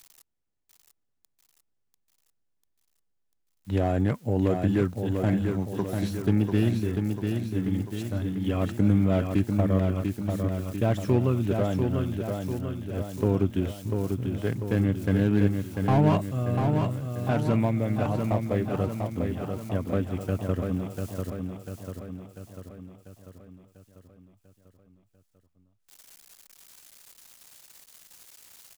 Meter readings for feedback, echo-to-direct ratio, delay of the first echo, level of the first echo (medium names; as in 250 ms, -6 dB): 55%, -3.5 dB, 694 ms, -5.0 dB